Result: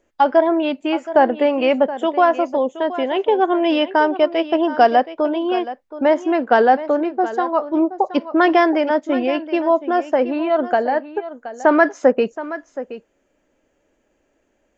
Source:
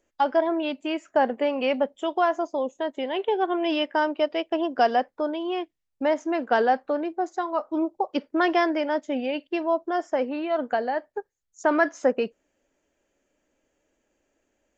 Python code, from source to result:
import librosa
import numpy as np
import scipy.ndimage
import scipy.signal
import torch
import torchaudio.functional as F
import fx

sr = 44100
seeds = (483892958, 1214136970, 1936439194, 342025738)

p1 = fx.high_shelf(x, sr, hz=3500.0, db=-8.0)
p2 = p1 + fx.echo_single(p1, sr, ms=723, db=-14.0, dry=0)
y = F.gain(torch.from_numpy(p2), 8.0).numpy()